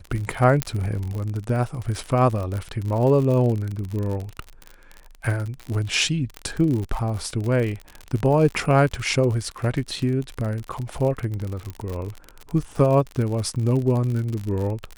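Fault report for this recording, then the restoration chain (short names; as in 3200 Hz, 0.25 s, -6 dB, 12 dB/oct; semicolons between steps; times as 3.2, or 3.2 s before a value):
crackle 52/s -27 dBFS
0.62 pop -5 dBFS
6.37 pop -16 dBFS
11.7 pop -20 dBFS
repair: de-click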